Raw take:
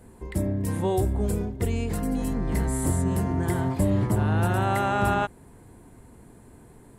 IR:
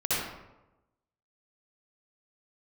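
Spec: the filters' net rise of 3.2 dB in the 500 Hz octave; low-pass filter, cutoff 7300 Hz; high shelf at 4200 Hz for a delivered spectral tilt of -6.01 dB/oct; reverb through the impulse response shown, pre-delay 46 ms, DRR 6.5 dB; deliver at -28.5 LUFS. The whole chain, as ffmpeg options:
-filter_complex "[0:a]lowpass=7.3k,equalizer=f=500:t=o:g=4.5,highshelf=f=4.2k:g=-6.5,asplit=2[a][b];[1:a]atrim=start_sample=2205,adelay=46[c];[b][c]afir=irnorm=-1:irlink=0,volume=-17dB[d];[a][d]amix=inputs=2:normalize=0,volume=-4.5dB"

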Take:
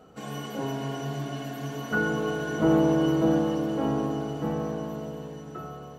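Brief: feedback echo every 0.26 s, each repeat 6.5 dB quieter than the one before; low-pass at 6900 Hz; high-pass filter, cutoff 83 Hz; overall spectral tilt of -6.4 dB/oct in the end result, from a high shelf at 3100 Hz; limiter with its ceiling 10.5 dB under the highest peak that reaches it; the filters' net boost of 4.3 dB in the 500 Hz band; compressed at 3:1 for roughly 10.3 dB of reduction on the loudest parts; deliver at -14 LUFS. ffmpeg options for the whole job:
-af "highpass=83,lowpass=6.9k,equalizer=f=500:t=o:g=5.5,highshelf=f=3.1k:g=-6.5,acompressor=threshold=-29dB:ratio=3,alimiter=level_in=4.5dB:limit=-24dB:level=0:latency=1,volume=-4.5dB,aecho=1:1:260|520|780|1040|1300|1560:0.473|0.222|0.105|0.0491|0.0231|0.0109,volume=22dB"

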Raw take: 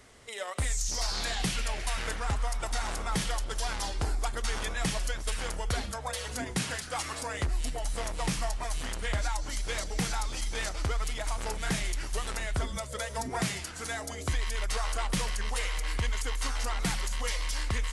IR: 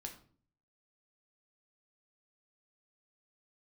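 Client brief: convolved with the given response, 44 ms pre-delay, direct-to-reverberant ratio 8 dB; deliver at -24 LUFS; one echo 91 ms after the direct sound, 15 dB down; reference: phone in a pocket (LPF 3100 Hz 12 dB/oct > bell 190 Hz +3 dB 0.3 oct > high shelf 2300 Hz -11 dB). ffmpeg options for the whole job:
-filter_complex "[0:a]aecho=1:1:91:0.178,asplit=2[a][b];[1:a]atrim=start_sample=2205,adelay=44[c];[b][c]afir=irnorm=-1:irlink=0,volume=-4.5dB[d];[a][d]amix=inputs=2:normalize=0,lowpass=3.1k,equalizer=f=190:t=o:w=0.3:g=3,highshelf=f=2.3k:g=-11,volume=10.5dB"

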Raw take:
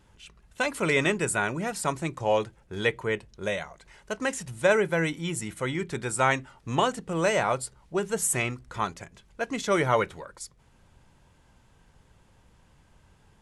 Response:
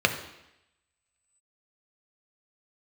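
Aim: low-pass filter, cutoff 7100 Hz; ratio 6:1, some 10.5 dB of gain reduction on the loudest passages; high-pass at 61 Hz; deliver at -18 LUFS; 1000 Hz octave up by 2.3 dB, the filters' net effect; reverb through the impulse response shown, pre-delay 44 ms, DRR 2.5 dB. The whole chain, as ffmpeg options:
-filter_complex "[0:a]highpass=61,lowpass=7.1k,equalizer=f=1k:t=o:g=3,acompressor=threshold=-27dB:ratio=6,asplit=2[a][b];[1:a]atrim=start_sample=2205,adelay=44[c];[b][c]afir=irnorm=-1:irlink=0,volume=-18dB[d];[a][d]amix=inputs=2:normalize=0,volume=13.5dB"

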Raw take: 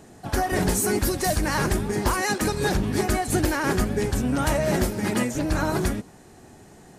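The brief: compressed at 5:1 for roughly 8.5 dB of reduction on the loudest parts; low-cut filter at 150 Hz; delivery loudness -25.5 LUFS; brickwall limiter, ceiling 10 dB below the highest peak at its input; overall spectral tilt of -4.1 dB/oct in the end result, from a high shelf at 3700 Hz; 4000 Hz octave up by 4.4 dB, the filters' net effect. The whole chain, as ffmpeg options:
-af "highpass=150,highshelf=f=3.7k:g=-5.5,equalizer=f=4k:t=o:g=9,acompressor=threshold=-29dB:ratio=5,volume=10dB,alimiter=limit=-17dB:level=0:latency=1"

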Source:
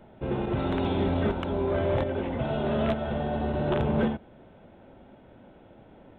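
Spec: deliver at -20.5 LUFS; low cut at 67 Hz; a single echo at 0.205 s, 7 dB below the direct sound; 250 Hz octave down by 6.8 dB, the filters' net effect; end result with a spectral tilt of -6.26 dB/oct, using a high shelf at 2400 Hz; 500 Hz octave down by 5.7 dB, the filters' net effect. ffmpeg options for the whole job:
-af "highpass=67,equalizer=f=250:t=o:g=-7.5,equalizer=f=500:t=o:g=-5,highshelf=f=2.4k:g=-5.5,aecho=1:1:205:0.447,volume=11.5dB"

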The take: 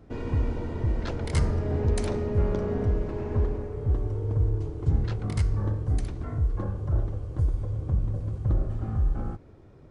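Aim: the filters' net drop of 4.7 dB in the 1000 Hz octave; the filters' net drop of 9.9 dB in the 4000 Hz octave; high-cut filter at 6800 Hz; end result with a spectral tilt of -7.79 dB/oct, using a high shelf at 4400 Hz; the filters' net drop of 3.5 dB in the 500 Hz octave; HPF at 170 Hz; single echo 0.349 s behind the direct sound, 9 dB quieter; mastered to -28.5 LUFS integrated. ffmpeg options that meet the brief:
-af "highpass=170,lowpass=6.8k,equalizer=f=500:t=o:g=-3.5,equalizer=f=1k:t=o:g=-4,equalizer=f=4k:t=o:g=-8,highshelf=f=4.4k:g=-7.5,aecho=1:1:349:0.355,volume=7.5dB"

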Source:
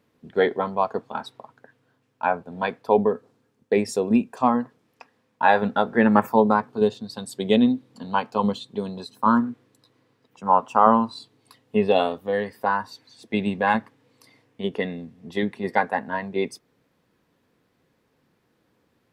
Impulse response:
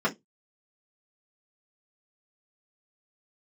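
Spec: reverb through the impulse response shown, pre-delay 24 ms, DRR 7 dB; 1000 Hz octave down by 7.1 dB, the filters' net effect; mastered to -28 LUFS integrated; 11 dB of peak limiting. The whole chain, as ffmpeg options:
-filter_complex "[0:a]equalizer=f=1k:t=o:g=-9,alimiter=limit=-15.5dB:level=0:latency=1,asplit=2[a][b];[1:a]atrim=start_sample=2205,adelay=24[c];[b][c]afir=irnorm=-1:irlink=0,volume=-19.5dB[d];[a][d]amix=inputs=2:normalize=0,volume=-1dB"

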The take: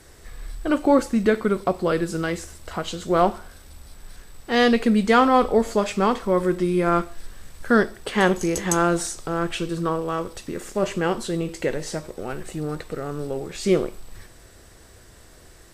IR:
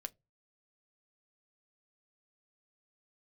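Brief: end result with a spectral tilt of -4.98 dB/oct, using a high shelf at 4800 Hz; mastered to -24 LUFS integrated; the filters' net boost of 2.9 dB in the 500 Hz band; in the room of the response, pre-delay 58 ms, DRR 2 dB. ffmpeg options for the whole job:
-filter_complex "[0:a]equalizer=f=500:t=o:g=3.5,highshelf=f=4.8k:g=3.5,asplit=2[a][b];[1:a]atrim=start_sample=2205,adelay=58[c];[b][c]afir=irnorm=-1:irlink=0,volume=1.5dB[d];[a][d]amix=inputs=2:normalize=0,volume=-5.5dB"

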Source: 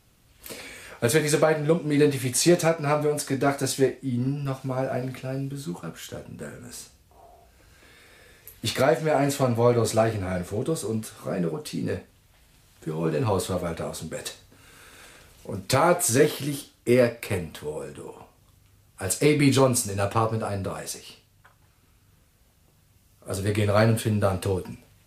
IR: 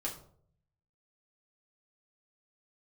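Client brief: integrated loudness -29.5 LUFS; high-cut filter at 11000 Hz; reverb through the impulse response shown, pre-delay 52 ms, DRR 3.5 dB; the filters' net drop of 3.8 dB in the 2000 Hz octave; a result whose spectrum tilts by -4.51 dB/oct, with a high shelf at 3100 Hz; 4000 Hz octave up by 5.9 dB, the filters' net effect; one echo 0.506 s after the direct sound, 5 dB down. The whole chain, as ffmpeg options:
-filter_complex "[0:a]lowpass=11k,equalizer=f=2k:t=o:g=-8,highshelf=f=3.1k:g=4.5,equalizer=f=4k:t=o:g=5.5,aecho=1:1:506:0.562,asplit=2[a][b];[1:a]atrim=start_sample=2205,adelay=52[c];[b][c]afir=irnorm=-1:irlink=0,volume=-5dB[d];[a][d]amix=inputs=2:normalize=0,volume=-8dB"

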